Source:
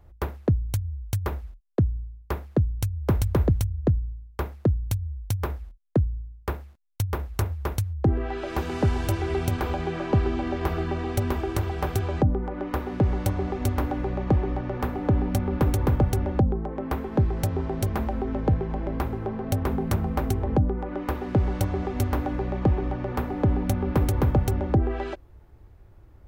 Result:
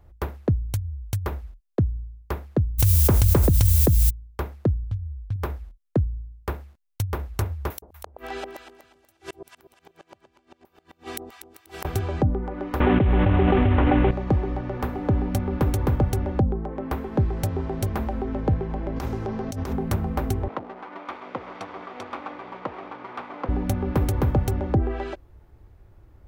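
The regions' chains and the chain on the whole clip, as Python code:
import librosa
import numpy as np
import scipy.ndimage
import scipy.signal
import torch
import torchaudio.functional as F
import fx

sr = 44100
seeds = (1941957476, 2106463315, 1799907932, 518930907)

y = fx.dmg_noise_colour(x, sr, seeds[0], colour='violet', level_db=-37.0, at=(2.78, 4.09), fade=0.02)
y = fx.env_flatten(y, sr, amount_pct=100, at=(2.78, 4.09), fade=0.02)
y = fx.chain(y, sr, fx.median_filter(points=41),
    fx.lowpass(hz=5200.0, slope=12),
    fx.peak_eq(hz=450.0, db=-11.0, octaves=2.1), at=(4.84, 5.36))
y = fx.chain(y, sr, fx.riaa(side='recording'),
    fx.gate_flip(shuts_db=-22.0, range_db=-39),
    fx.echo_alternate(ms=121, hz=800.0, feedback_pct=51, wet_db=-3), at=(7.7, 11.85))
y = fx.chain(y, sr, fx.cvsd(bps=16000),
    fx.env_flatten(amount_pct=100), at=(12.8, 14.11))
y = fx.chain(y, sr, fx.peak_eq(hz=6000.0, db=13.0, octaves=1.2),
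    fx.over_compress(threshold_db=-28.0, ratio=-1.0), at=(18.96, 19.73))
y = fx.chain(y, sr, fx.lower_of_two(delay_ms=0.86),
    fx.bandpass_edges(low_hz=470.0, high_hz=3500.0), at=(20.48, 23.49))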